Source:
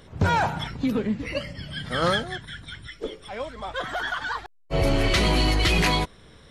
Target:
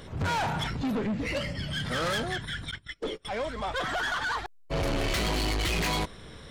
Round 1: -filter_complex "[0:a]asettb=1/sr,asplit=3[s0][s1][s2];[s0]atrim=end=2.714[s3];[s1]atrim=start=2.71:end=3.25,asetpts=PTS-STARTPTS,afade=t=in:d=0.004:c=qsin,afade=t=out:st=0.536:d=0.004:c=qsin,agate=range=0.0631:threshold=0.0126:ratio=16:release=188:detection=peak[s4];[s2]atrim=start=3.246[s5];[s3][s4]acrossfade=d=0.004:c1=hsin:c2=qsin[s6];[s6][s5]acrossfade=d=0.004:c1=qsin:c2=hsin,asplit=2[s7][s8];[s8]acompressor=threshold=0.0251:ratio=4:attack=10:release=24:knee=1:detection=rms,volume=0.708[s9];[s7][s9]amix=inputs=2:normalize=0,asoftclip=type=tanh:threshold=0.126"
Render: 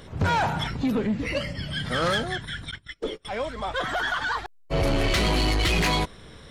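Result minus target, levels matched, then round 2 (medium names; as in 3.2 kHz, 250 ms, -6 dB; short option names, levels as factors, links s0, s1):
saturation: distortion -7 dB
-filter_complex "[0:a]asettb=1/sr,asplit=3[s0][s1][s2];[s0]atrim=end=2.714[s3];[s1]atrim=start=2.71:end=3.25,asetpts=PTS-STARTPTS,afade=t=in:d=0.004:c=qsin,afade=t=out:st=0.536:d=0.004:c=qsin,agate=range=0.0631:threshold=0.0126:ratio=16:release=188:detection=peak[s4];[s2]atrim=start=3.246[s5];[s3][s4]acrossfade=d=0.004:c1=hsin:c2=qsin[s6];[s6][s5]acrossfade=d=0.004:c1=qsin:c2=hsin,asplit=2[s7][s8];[s8]acompressor=threshold=0.0251:ratio=4:attack=10:release=24:knee=1:detection=rms,volume=0.708[s9];[s7][s9]amix=inputs=2:normalize=0,asoftclip=type=tanh:threshold=0.0501"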